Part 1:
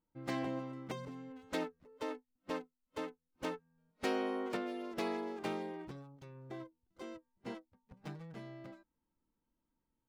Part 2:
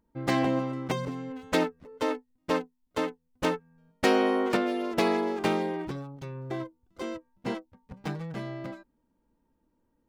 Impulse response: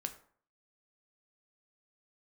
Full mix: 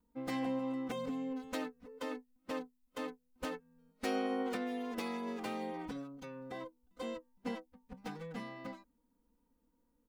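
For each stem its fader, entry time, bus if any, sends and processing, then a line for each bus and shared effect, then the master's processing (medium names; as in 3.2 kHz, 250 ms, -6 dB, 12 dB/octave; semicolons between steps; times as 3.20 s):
-4.0 dB, 0.00 s, no send, treble shelf 7.8 kHz +10.5 dB
-7.5 dB, 3.9 ms, no send, compression, threshold -29 dBFS, peak gain reduction 10.5 dB; peak limiter -26 dBFS, peak gain reduction 11 dB; comb 4.1 ms, depth 92%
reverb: none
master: none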